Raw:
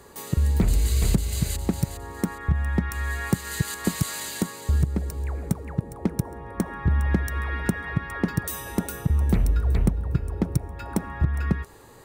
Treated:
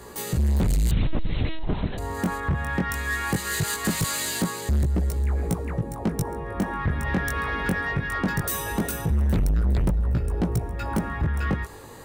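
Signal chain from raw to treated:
chorus effect 0.2 Hz, delay 16.5 ms, depth 5.2 ms
soft clipping −27.5 dBFS, distortion −7 dB
0:00.91–0:01.98: linear-prediction vocoder at 8 kHz pitch kept
level +9 dB

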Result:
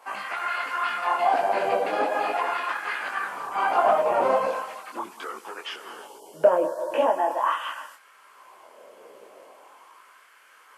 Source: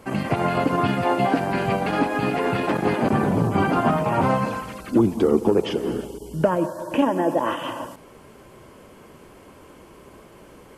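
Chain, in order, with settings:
auto-filter high-pass sine 0.41 Hz 510–1,500 Hz
micro pitch shift up and down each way 45 cents

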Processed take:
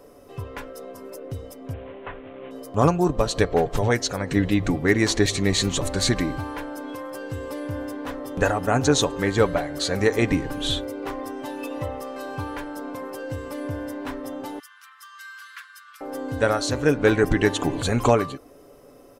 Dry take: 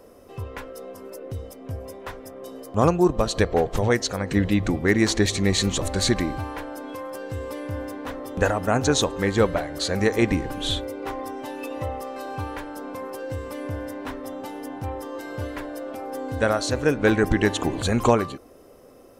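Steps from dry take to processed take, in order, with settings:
0:01.73–0:02.51: variable-slope delta modulation 16 kbit/s
0:14.59–0:16.01: Chebyshev high-pass with heavy ripple 1,100 Hz, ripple 3 dB
comb filter 7 ms, depth 37%

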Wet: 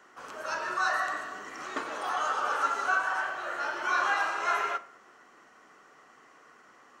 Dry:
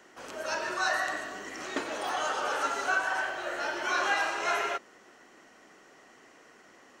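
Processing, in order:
parametric band 1,200 Hz +10 dB 0.81 octaves
on a send: convolution reverb RT60 0.60 s, pre-delay 3 ms, DRR 11.5 dB
on the sum: level −5 dB

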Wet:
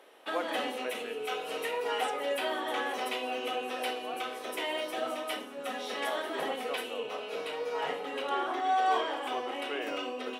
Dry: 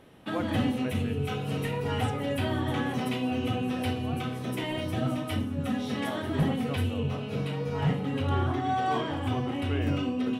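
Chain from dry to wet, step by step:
high-pass filter 420 Hz 24 dB per octave
level +1.5 dB

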